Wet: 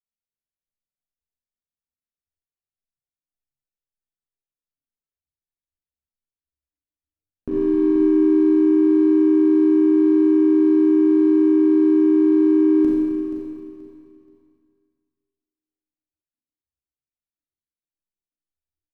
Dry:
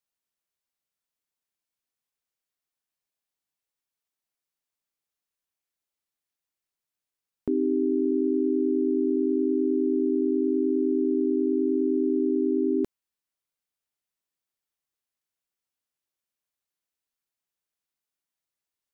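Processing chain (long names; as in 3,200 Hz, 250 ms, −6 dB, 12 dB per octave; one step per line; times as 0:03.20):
adaptive Wiener filter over 41 samples
low-shelf EQ 100 Hz +11.5 dB
double-tracking delay 13 ms −11.5 dB
on a send: repeating echo 479 ms, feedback 27%, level −9.5 dB
on the sum: four-comb reverb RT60 1.9 s, combs from 29 ms, DRR −5.5 dB
noise reduction from a noise print of the clip's start 10 dB
level −2.5 dB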